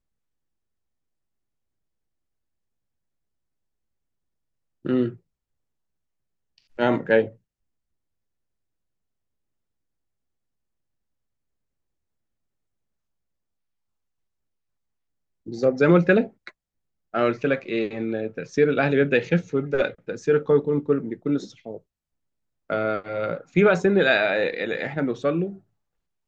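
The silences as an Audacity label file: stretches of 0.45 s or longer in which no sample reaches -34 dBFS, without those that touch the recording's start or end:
5.130000	6.790000	silence
7.280000	15.470000	silence
16.490000	17.140000	silence
21.770000	22.700000	silence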